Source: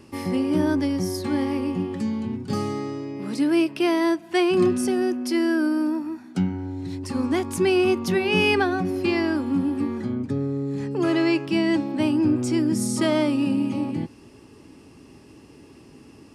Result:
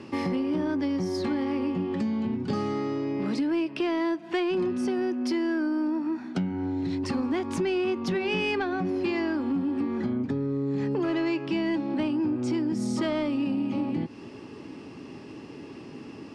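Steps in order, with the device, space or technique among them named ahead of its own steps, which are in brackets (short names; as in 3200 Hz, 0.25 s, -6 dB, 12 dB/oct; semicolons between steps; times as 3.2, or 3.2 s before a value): AM radio (BPF 130–4400 Hz; compressor 5:1, threshold -31 dBFS, peak gain reduction 14 dB; soft clip -25 dBFS, distortion -23 dB); gain +6.5 dB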